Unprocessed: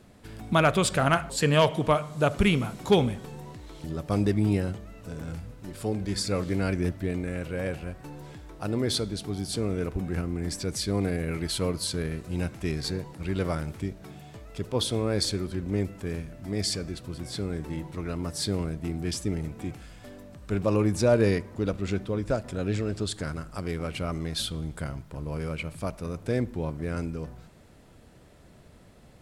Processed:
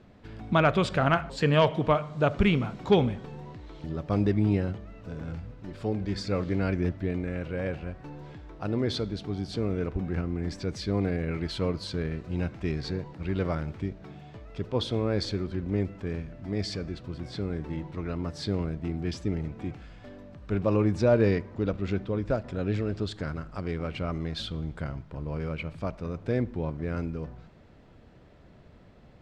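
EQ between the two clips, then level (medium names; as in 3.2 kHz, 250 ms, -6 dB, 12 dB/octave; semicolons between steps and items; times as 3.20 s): distance through air 190 m; treble shelf 11 kHz +8.5 dB; 0.0 dB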